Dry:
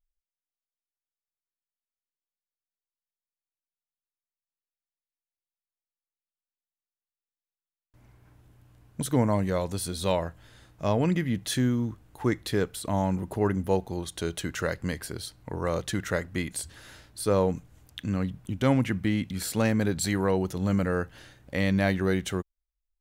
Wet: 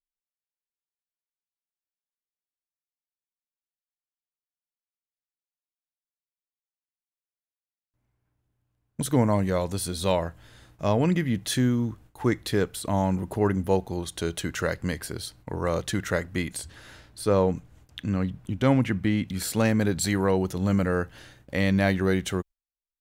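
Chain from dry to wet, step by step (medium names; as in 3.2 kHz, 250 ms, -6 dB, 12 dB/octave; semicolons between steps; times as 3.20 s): 16.57–19.28 s: treble shelf 5.9 kHz -6.5 dB; gate with hold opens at -46 dBFS; trim +2 dB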